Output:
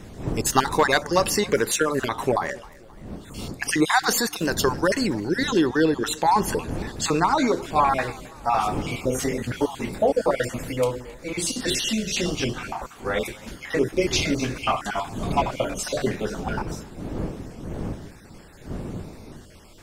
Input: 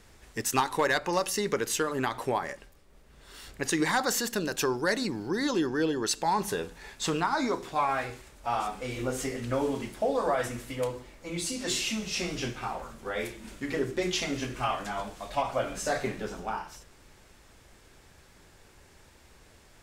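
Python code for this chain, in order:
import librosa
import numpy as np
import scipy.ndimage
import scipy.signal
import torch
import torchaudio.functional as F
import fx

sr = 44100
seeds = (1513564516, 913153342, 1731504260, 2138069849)

y = fx.spec_dropout(x, sr, seeds[0], share_pct=32)
y = fx.dmg_wind(y, sr, seeds[1], corner_hz=280.0, level_db=-44.0)
y = fx.echo_warbled(y, sr, ms=263, feedback_pct=46, rate_hz=2.8, cents=112, wet_db=-22)
y = y * 10.0 ** (8.0 / 20.0)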